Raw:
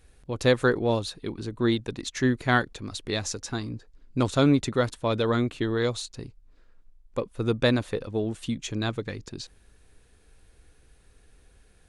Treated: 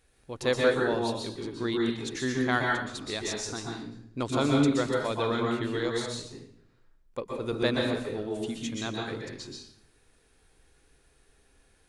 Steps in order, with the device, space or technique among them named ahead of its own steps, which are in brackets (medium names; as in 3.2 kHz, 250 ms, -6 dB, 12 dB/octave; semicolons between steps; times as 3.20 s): bathroom (reverberation RT60 0.65 s, pre-delay 116 ms, DRR -1.5 dB); bass shelf 220 Hz -8.5 dB; trim -4.5 dB